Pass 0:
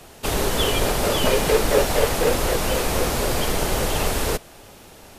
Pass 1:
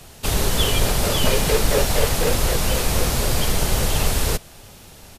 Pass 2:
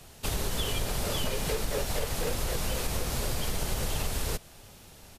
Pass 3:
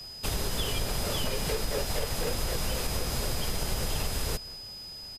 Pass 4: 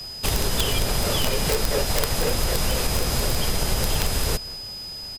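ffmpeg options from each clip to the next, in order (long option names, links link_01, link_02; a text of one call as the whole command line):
ffmpeg -i in.wav -af "firequalizer=gain_entry='entry(130,0);entry(300,-8);entry(4100,-2)':delay=0.05:min_phase=1,volume=5dB" out.wav
ffmpeg -i in.wav -af "acompressor=threshold=-18dB:ratio=6,volume=-7.5dB" out.wav
ffmpeg -i in.wav -filter_complex "[0:a]aeval=exprs='val(0)+0.00891*sin(2*PI*5000*n/s)':channel_layout=same,asplit=2[link_01][link_02];[link_02]adelay=186.6,volume=-20dB,highshelf=frequency=4000:gain=-4.2[link_03];[link_01][link_03]amix=inputs=2:normalize=0" out.wav
ffmpeg -i in.wav -af "aeval=exprs='(mod(8.91*val(0)+1,2)-1)/8.91':channel_layout=same,volume=7.5dB" out.wav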